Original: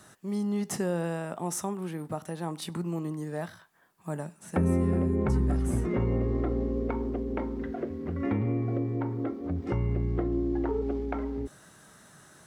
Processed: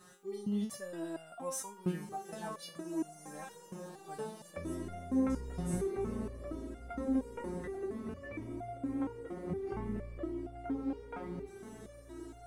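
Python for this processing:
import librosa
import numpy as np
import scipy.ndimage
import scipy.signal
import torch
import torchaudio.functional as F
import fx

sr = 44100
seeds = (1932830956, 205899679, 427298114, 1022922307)

y = fx.dmg_buzz(x, sr, base_hz=400.0, harmonics=3, level_db=-58.0, tilt_db=-4, odd_only=False)
y = fx.echo_diffused(y, sr, ms=1678, feedback_pct=51, wet_db=-9.5)
y = fx.resonator_held(y, sr, hz=4.3, low_hz=180.0, high_hz=700.0)
y = y * 10.0 ** (8.0 / 20.0)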